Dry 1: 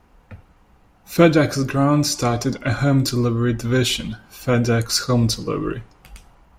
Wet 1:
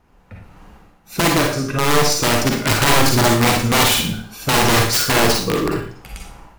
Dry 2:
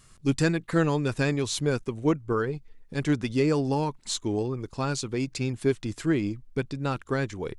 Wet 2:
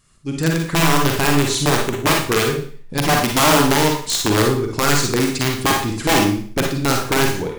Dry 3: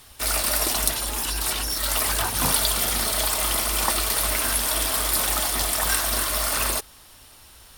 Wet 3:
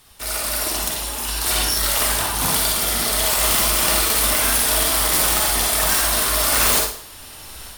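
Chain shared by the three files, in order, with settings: level rider gain up to 14.5 dB; integer overflow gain 7.5 dB; Schroeder reverb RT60 0.48 s, DRR 0.5 dB; trim -3.5 dB

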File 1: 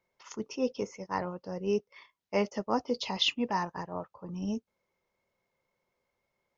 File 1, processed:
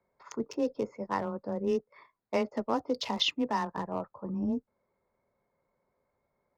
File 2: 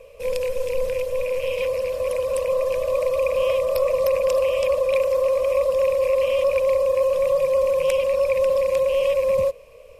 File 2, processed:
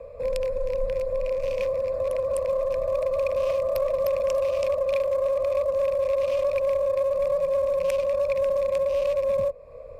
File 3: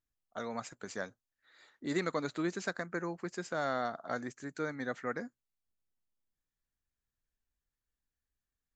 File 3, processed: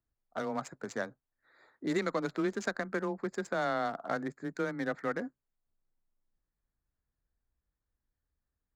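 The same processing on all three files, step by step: local Wiener filter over 15 samples; compression 2:1, threshold -34 dBFS; frequency shift +15 Hz; trim +5 dB

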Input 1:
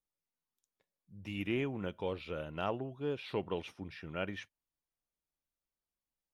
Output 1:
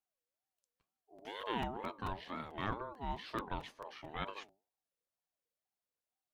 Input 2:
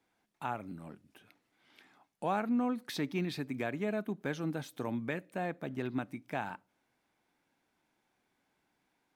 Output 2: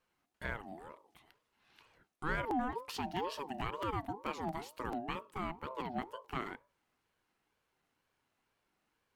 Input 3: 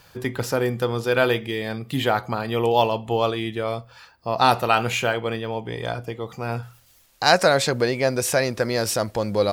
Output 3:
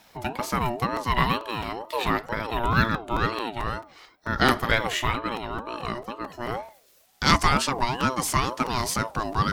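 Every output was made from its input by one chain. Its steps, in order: hum notches 50/100/150/200/250/300/350/400/450 Hz; crackling interface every 0.22 s, samples 256, repeat, from 0.96 s; ring modulator with a swept carrier 630 Hz, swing 25%, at 2.1 Hz

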